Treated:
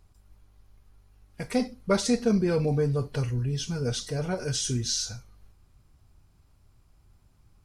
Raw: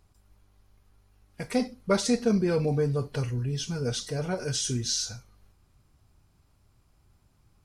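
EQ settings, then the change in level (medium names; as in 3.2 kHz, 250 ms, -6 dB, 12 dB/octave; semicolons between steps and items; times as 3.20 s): bass shelf 70 Hz +7 dB; 0.0 dB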